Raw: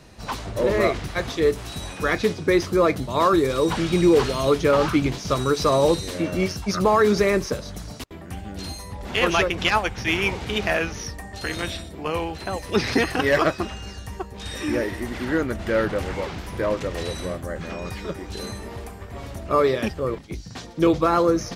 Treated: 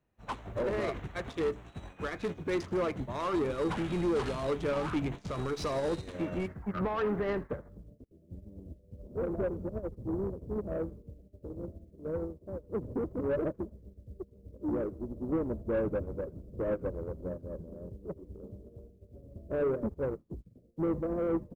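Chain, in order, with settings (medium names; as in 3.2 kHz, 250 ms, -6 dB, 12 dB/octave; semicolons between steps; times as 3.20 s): local Wiener filter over 9 samples; steep low-pass 11 kHz 96 dB/octave, from 6.46 s 2.1 kHz, from 7.68 s 620 Hz; peak limiter -18 dBFS, peak gain reduction 10.5 dB; bit crusher 11-bit; saturation -24 dBFS, distortion -14 dB; frequency-shifting echo 81 ms, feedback 51%, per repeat -130 Hz, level -16.5 dB; upward expansion 2.5:1, over -46 dBFS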